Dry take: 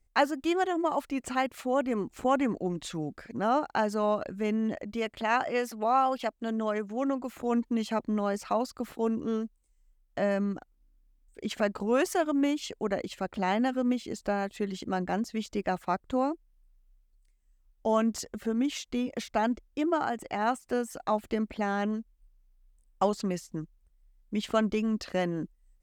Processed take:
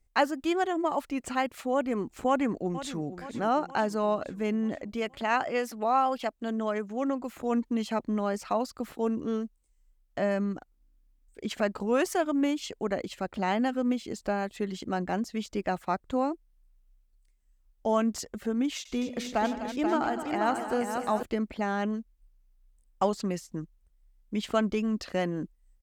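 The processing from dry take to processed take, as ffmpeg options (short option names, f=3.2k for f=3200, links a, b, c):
-filter_complex "[0:a]asplit=2[a][b];[b]afade=t=in:st=2.27:d=0.01,afade=t=out:st=3.01:d=0.01,aecho=0:1:470|940|1410|1880|2350|2820|3290:0.223872|0.134323|0.080594|0.0483564|0.0290138|0.0174083|0.010445[c];[a][c]amix=inputs=2:normalize=0,asettb=1/sr,asplit=3[d][e][f];[d]atrim=end=18.764[g];[e]atrim=start=18.76:end=21.23,asetpts=PTS-STARTPTS,afade=t=in:d=0.004:c=qsin,afade=t=out:st=2.466:d=0.004:c=qsin,aecho=1:1:91|157|253|483|687:0.168|0.158|0.282|0.501|0.224,atrim=end_sample=108927[h];[f]atrim=start=21.226[i];[g][h]acrossfade=d=0.004:c1=hsin:c2=qsin[j];[j][i]acrossfade=d=0.004:c1=qsin:c2=hsin"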